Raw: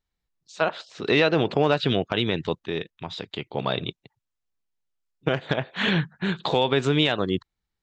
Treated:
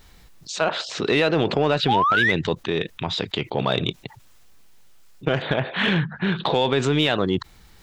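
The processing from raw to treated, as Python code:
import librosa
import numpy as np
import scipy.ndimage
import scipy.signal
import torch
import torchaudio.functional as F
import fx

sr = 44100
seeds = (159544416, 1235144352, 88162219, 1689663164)

p1 = fx.spec_paint(x, sr, seeds[0], shape='rise', start_s=1.88, length_s=0.44, low_hz=750.0, high_hz=2100.0, level_db=-19.0)
p2 = fx.lowpass(p1, sr, hz=3900.0, slope=24, at=(5.42, 6.54))
p3 = 10.0 ** (-20.0 / 20.0) * np.tanh(p2 / 10.0 ** (-20.0 / 20.0))
p4 = p2 + (p3 * 10.0 ** (-7.0 / 20.0))
p5 = fx.env_flatten(p4, sr, amount_pct=50)
y = p5 * 10.0 ** (-2.5 / 20.0)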